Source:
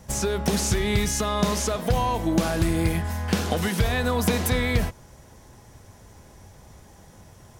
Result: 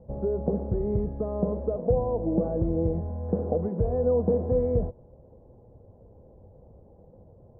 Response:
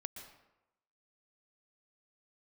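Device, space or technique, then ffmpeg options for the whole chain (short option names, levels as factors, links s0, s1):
under water: -af "lowpass=f=700:w=0.5412,lowpass=f=700:w=1.3066,equalizer=f=500:t=o:w=0.39:g=10,volume=0.631"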